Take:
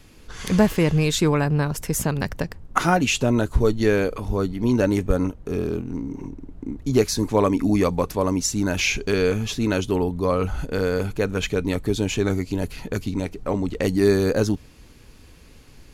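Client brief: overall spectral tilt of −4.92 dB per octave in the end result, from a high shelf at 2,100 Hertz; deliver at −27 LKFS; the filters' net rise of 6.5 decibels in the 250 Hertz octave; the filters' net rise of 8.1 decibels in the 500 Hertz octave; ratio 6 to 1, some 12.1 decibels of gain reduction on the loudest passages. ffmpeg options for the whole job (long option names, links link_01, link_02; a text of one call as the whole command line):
ffmpeg -i in.wav -af "equalizer=frequency=250:width_type=o:gain=6,equalizer=frequency=500:width_type=o:gain=7.5,highshelf=frequency=2100:gain=7,acompressor=threshold=-19dB:ratio=6,volume=-3dB" out.wav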